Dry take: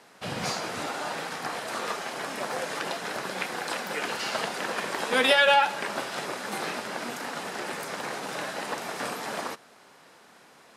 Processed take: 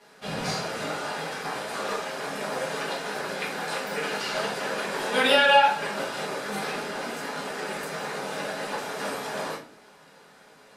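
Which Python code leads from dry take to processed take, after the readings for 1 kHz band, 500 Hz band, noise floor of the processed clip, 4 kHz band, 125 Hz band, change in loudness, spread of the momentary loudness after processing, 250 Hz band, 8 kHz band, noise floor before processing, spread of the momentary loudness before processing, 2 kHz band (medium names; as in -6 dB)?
+2.0 dB, +2.5 dB, -54 dBFS, +1.0 dB, +3.5 dB, +1.5 dB, 12 LU, +2.0 dB, -0.5 dB, -55 dBFS, 12 LU, +1.0 dB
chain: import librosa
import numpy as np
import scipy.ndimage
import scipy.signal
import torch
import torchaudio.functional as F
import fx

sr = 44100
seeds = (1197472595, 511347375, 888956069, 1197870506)

y = fx.room_shoebox(x, sr, seeds[0], volume_m3=34.0, walls='mixed', distance_m=1.3)
y = F.gain(torch.from_numpy(y), -7.0).numpy()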